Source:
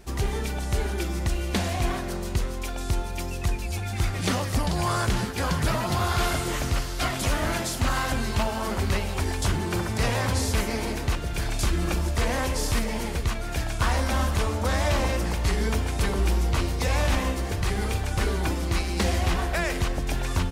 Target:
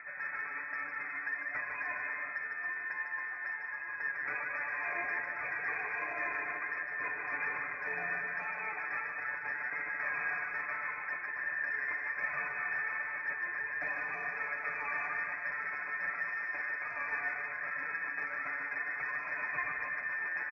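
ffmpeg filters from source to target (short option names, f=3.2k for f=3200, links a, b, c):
-filter_complex "[0:a]acompressor=mode=upward:threshold=-27dB:ratio=2.5,aeval=exprs='val(0)*sin(2*PI*850*n/s)':c=same,lowpass=f=2.2k:t=q:w=0.5098,lowpass=f=2.2k:t=q:w=0.6013,lowpass=f=2.2k:t=q:w=0.9,lowpass=f=2.2k:t=q:w=2.563,afreqshift=-2600,asoftclip=type=tanh:threshold=-9.5dB,areverse,acompressor=threshold=-24dB:ratio=6,areverse,highpass=f=44:w=0.5412,highpass=f=44:w=1.3066,lowshelf=f=63:g=6.5,aecho=1:1:6.8:0.86,asplit=2[a][b];[b]aecho=0:1:150|270|366|442.8|504.2:0.631|0.398|0.251|0.158|0.1[c];[a][c]amix=inputs=2:normalize=0,flanger=delay=1.4:depth=1.5:regen=71:speed=1.3:shape=triangular,volume=-6.5dB"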